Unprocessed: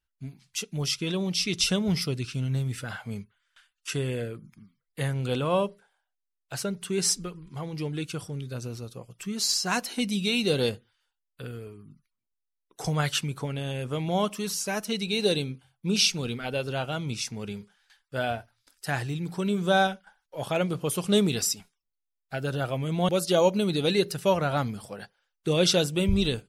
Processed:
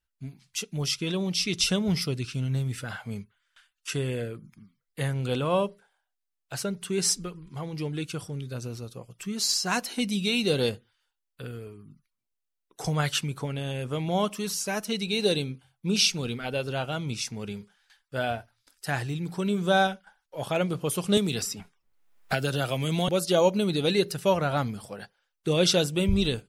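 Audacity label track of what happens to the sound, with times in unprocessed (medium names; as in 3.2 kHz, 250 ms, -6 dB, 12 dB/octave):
21.170000	23.080000	three bands compressed up and down depth 100%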